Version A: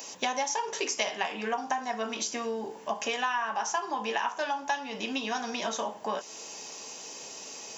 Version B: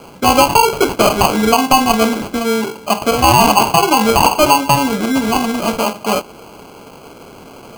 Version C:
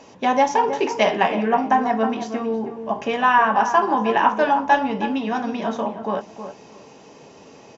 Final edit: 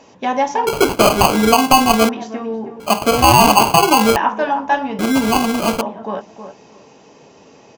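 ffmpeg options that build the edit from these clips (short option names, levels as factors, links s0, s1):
-filter_complex "[1:a]asplit=3[s0][s1][s2];[2:a]asplit=4[s3][s4][s5][s6];[s3]atrim=end=0.672[s7];[s0]atrim=start=0.668:end=2.092[s8];[s4]atrim=start=2.088:end=2.802[s9];[s1]atrim=start=2.798:end=4.162[s10];[s5]atrim=start=4.158:end=4.992[s11];[s2]atrim=start=4.988:end=5.812[s12];[s6]atrim=start=5.808[s13];[s7][s8]acrossfade=d=0.004:c1=hsin:c2=hsin[s14];[s14][s9]acrossfade=d=0.004:c1=hsin:c2=hsin[s15];[s15][s10]acrossfade=d=0.004:c1=hsin:c2=hsin[s16];[s16][s11]acrossfade=d=0.004:c1=hsin:c2=hsin[s17];[s17][s12]acrossfade=d=0.004:c1=hsin:c2=hsin[s18];[s18][s13]acrossfade=d=0.004:c1=hsin:c2=hsin"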